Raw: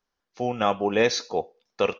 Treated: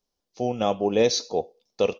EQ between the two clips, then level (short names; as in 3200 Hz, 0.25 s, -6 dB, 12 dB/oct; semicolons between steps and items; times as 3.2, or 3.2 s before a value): EQ curve 600 Hz 0 dB, 1600 Hz -14 dB, 3100 Hz -3 dB, 5100 Hz +2 dB; +1.5 dB